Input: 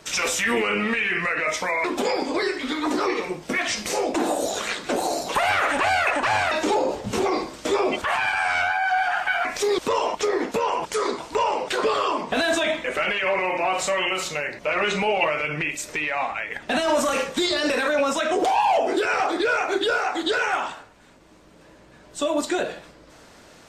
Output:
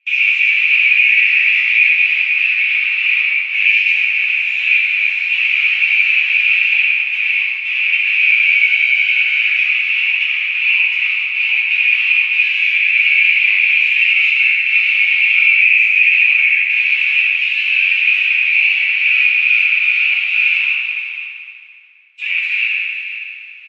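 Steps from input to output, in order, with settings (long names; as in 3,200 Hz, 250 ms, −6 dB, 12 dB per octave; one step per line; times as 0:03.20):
noise gate −36 dBFS, range −27 dB
in parallel at −8 dB: sine wavefolder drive 18 dB, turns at −9 dBFS
on the sum: flat-topped band-pass 2,500 Hz, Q 6.6
reversed playback
upward compression, threshold −41 dBFS
reversed playback
flanger 0.26 Hz, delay 8.1 ms, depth 2.7 ms, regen +36%
single-tap delay 510 ms −12 dB
convolution reverb RT60 2.2 s, pre-delay 4 ms, DRR −6.5 dB
boost into a limiter +14.5 dB
level −1 dB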